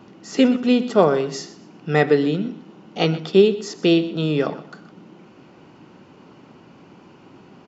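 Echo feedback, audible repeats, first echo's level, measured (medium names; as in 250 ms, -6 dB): 28%, 2, -16.5 dB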